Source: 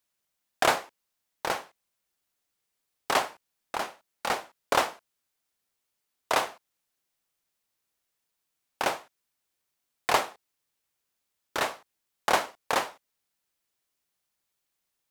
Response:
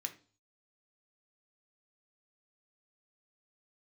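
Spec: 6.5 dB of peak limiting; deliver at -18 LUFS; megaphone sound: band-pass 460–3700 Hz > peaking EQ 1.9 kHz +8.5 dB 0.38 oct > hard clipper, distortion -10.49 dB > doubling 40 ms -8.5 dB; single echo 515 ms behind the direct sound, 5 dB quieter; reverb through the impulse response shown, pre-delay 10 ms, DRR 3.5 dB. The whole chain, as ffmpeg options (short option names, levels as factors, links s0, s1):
-filter_complex "[0:a]alimiter=limit=0.2:level=0:latency=1,aecho=1:1:515:0.562,asplit=2[s0][s1];[1:a]atrim=start_sample=2205,adelay=10[s2];[s1][s2]afir=irnorm=-1:irlink=0,volume=0.75[s3];[s0][s3]amix=inputs=2:normalize=0,highpass=460,lowpass=3700,equalizer=f=1900:t=o:w=0.38:g=8.5,asoftclip=type=hard:threshold=0.0708,asplit=2[s4][s5];[s5]adelay=40,volume=0.376[s6];[s4][s6]amix=inputs=2:normalize=0,volume=4.73"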